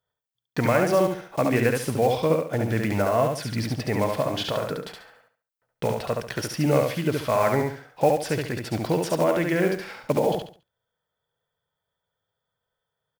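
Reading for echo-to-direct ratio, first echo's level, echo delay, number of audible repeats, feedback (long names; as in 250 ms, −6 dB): −3.0 dB, −3.5 dB, 70 ms, 4, 30%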